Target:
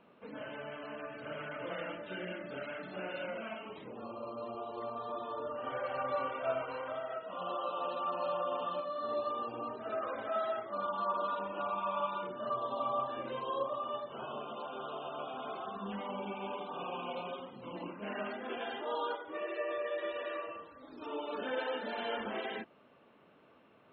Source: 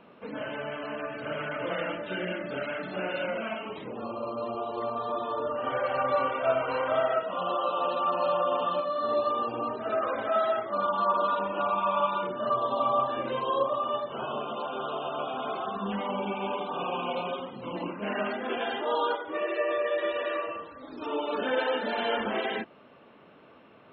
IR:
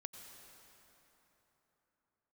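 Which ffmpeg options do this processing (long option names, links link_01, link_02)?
-filter_complex "[0:a]asplit=3[link_01][link_02][link_03];[link_01]afade=type=out:start_time=6.64:duration=0.02[link_04];[link_02]acompressor=threshold=-28dB:ratio=5,afade=type=in:start_time=6.64:duration=0.02,afade=type=out:start_time=7.39:duration=0.02[link_05];[link_03]afade=type=in:start_time=7.39:duration=0.02[link_06];[link_04][link_05][link_06]amix=inputs=3:normalize=0,volume=-8.5dB"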